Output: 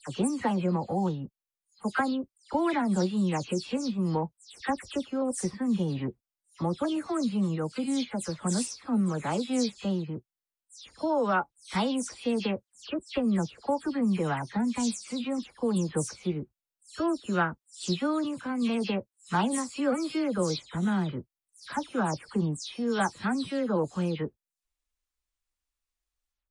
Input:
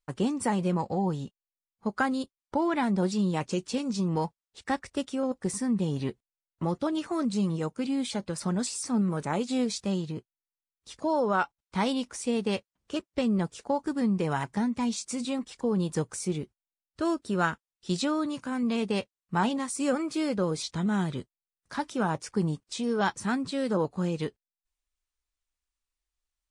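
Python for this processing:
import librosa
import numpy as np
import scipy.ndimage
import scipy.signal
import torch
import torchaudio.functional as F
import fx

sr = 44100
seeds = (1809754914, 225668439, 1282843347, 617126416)

y = fx.spec_delay(x, sr, highs='early', ms=169)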